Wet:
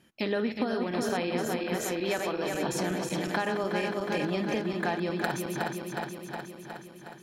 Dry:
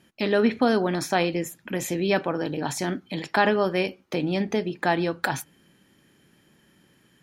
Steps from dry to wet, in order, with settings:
feedback delay that plays each chunk backwards 182 ms, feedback 80%, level −6 dB
0:01.76–0:02.60: parametric band 190 Hz −8 dB 1.4 octaves
downward compressor 10 to 1, threshold −22 dBFS, peak gain reduction 10 dB
level −3 dB

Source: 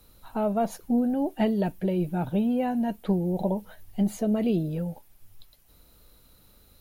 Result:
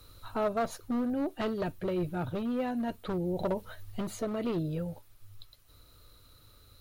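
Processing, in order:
gain into a clipping stage and back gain 21 dB
speech leveller within 5 dB 0.5 s
thirty-one-band graphic EQ 100 Hz +10 dB, 200 Hz −11 dB, 800 Hz −6 dB, 1,250 Hz +7 dB, 4,000 Hz +5 dB, 12,500 Hz −7 dB
level −2 dB

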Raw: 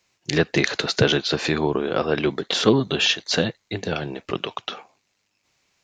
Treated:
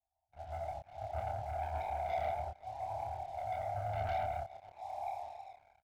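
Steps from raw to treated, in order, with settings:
phaser with its sweep stopped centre 490 Hz, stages 6
dense smooth reverb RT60 1.3 s, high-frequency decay 0.95×, pre-delay 110 ms, DRR −8 dB
brickwall limiter −9.5 dBFS, peak gain reduction 8.5 dB
downward compressor 6 to 1, threshold −31 dBFS, peak gain reduction 15.5 dB
inverse Chebyshev band-stop filter 180–460 Hz, stop band 50 dB
low-shelf EQ 210 Hz −8 dB
single-tap delay 323 ms −16.5 dB
volume swells 444 ms
Butterworth low-pass 740 Hz 72 dB per octave
low-shelf EQ 66 Hz −9.5 dB
leveller curve on the samples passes 3
double-tracking delay 28 ms −3 dB
level +8.5 dB

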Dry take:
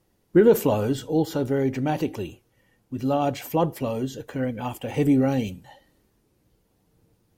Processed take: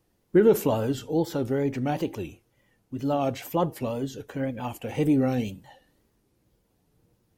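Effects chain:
tape wow and flutter 94 cents
level −2.5 dB

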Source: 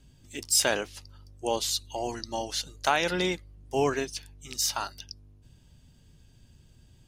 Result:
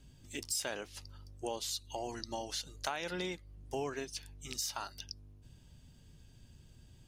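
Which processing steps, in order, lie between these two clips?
downward compressor 3 to 1, threshold −36 dBFS, peak gain reduction 13 dB
level −1.5 dB

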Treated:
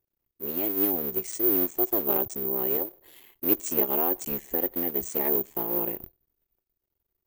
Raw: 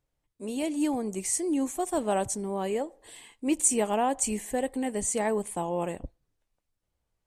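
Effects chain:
sub-harmonics by changed cycles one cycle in 3, muted
parametric band 370 Hz +11.5 dB 0.34 octaves
bad sample-rate conversion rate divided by 3×, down filtered, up zero stuff
level −4.5 dB

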